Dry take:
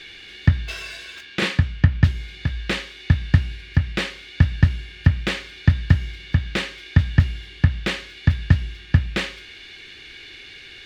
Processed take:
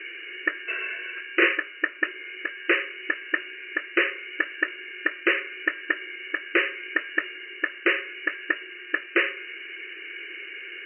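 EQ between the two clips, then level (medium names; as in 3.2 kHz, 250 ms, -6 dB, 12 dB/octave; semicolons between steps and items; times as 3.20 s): brick-wall FIR band-pass 310–3000 Hz; distance through air 240 m; static phaser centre 2 kHz, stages 4; +8.5 dB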